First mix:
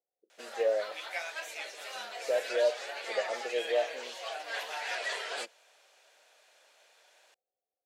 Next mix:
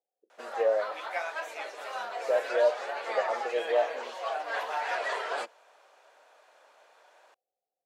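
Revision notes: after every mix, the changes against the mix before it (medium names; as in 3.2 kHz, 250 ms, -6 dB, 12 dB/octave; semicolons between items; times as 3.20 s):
background: add tilt shelf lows +6 dB, about 1.2 kHz; master: add peaking EQ 1.1 kHz +9.5 dB 1.2 oct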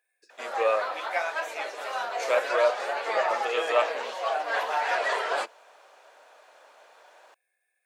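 speech: remove Chebyshev low-pass 810 Hz, order 5; background +5.0 dB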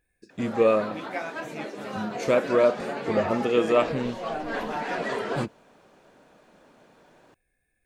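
background -5.0 dB; master: remove high-pass 580 Hz 24 dB/octave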